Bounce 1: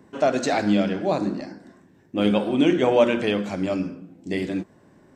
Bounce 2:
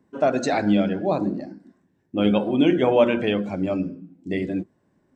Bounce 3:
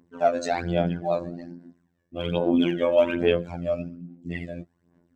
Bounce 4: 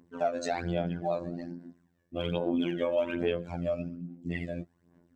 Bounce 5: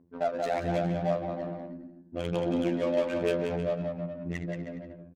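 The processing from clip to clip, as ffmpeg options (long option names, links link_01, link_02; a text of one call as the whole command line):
ffmpeg -i in.wav -af "afftdn=noise_reduction=13:noise_floor=-35,lowshelf=frequency=140:gain=3.5" out.wav
ffmpeg -i in.wav -af "afftfilt=real='hypot(re,im)*cos(PI*b)':imag='0':win_size=2048:overlap=0.75,aphaser=in_gain=1:out_gain=1:delay=1.8:decay=0.61:speed=1.2:type=sinusoidal,volume=-2.5dB" out.wav
ffmpeg -i in.wav -af "acompressor=threshold=-29dB:ratio=2.5" out.wav
ffmpeg -i in.wav -af "aecho=1:1:180|315|416.2|492.2|549.1:0.631|0.398|0.251|0.158|0.1,adynamicsmooth=sensitivity=5.5:basefreq=770" out.wav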